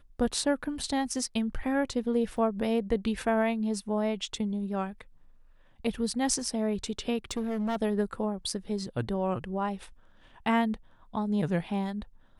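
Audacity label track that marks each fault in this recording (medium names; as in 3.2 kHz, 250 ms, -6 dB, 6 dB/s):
2.370000	2.370000	dropout 4.6 ms
7.310000	7.760000	clipped -27 dBFS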